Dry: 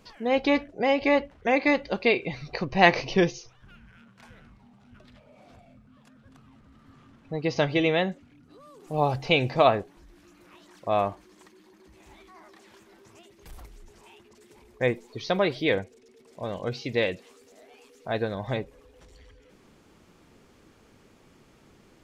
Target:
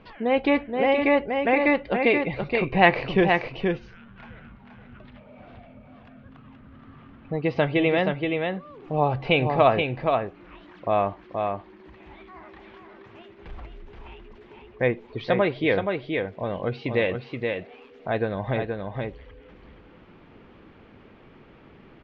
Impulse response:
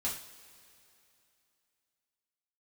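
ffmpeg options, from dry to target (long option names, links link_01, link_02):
-filter_complex "[0:a]lowpass=frequency=3100:width=0.5412,lowpass=frequency=3100:width=1.3066,aecho=1:1:475:0.531,asplit=2[link_01][link_02];[link_02]acompressor=threshold=-33dB:ratio=6,volume=-0.5dB[link_03];[link_01][link_03]amix=inputs=2:normalize=0"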